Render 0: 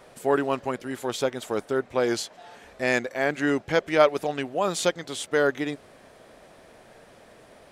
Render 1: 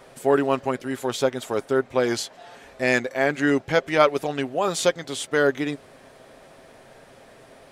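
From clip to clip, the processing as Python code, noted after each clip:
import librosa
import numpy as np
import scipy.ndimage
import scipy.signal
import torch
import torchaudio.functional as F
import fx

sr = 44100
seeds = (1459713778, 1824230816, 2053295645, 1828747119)

y = x + 0.31 * np.pad(x, (int(7.5 * sr / 1000.0), 0))[:len(x)]
y = y * 10.0 ** (2.0 / 20.0)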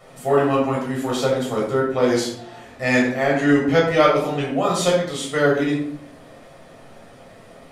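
y = fx.room_shoebox(x, sr, seeds[0], volume_m3=1000.0, walls='furnished', distance_m=6.4)
y = y * 10.0 ** (-4.5 / 20.0)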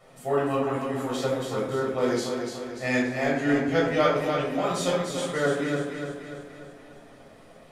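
y = fx.echo_feedback(x, sr, ms=293, feedback_pct=52, wet_db=-6)
y = y * 10.0 ** (-7.5 / 20.0)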